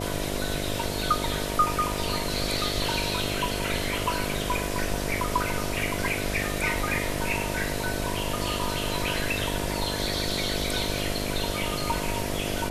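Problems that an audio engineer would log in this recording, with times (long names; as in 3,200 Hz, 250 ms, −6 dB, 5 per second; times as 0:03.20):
mains buzz 50 Hz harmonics 14 −32 dBFS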